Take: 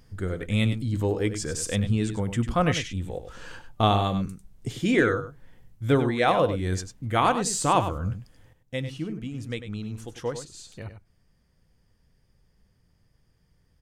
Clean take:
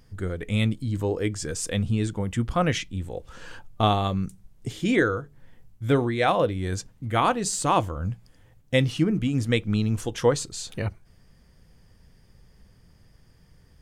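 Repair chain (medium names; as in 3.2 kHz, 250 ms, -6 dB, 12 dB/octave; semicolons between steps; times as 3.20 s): inverse comb 98 ms -10 dB; trim 0 dB, from 8.53 s +10 dB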